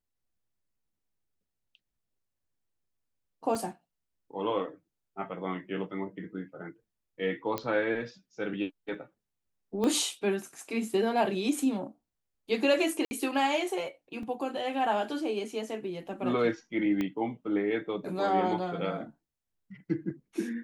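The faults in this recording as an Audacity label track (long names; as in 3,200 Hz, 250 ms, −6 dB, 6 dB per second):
3.550000	3.550000	drop-out 3.3 ms
7.580000	7.580000	click −16 dBFS
9.840000	9.840000	click −18 dBFS
13.050000	13.110000	drop-out 60 ms
14.230000	14.230000	drop-out 2.7 ms
17.010000	17.010000	click −19 dBFS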